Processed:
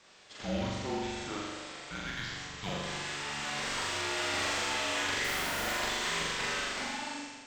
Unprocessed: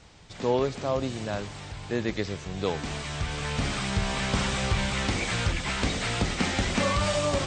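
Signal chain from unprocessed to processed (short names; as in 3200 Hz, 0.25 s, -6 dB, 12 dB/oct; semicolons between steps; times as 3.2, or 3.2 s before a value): ending faded out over 1.37 s; HPF 750 Hz 12 dB/oct; in parallel at -4.5 dB: hard clip -32 dBFS, distortion -9 dB; on the sum: frequency shift -300 Hz; 5.24–5.68 Schmitt trigger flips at -34.5 dBFS; on a send: flutter echo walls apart 7.2 m, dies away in 1.3 s; on the sum: gain -8 dB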